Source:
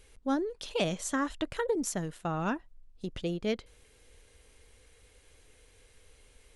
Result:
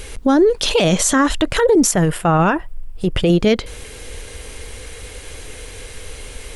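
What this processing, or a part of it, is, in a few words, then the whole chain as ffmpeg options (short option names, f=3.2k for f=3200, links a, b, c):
loud club master: -filter_complex "[0:a]acompressor=threshold=-33dB:ratio=2.5,asoftclip=type=hard:threshold=-23dB,alimiter=level_in=31.5dB:limit=-1dB:release=50:level=0:latency=1,asettb=1/sr,asplit=3[a][b][c];[a]atrim=end=1.914[d];[b]atrim=start=1.91:end=3.3,asetpts=PTS-STARTPTS,afade=t=in:d=0.004:c=qsin,afade=t=out:st=1.386:d=0.004:c=qsin,equalizer=f=250:t=o:w=0.33:g=-12,equalizer=f=4k:t=o:w=0.33:g=-10,equalizer=f=6.3k:t=o:w=0.33:g=-11[e];[c]atrim=start=3.296[f];[d][e]acrossfade=d=0.004:c1=hsin:c2=qsin[g];[g][f]acrossfade=d=0.004:c1=qsin:c2=hsin,volume=-5.5dB"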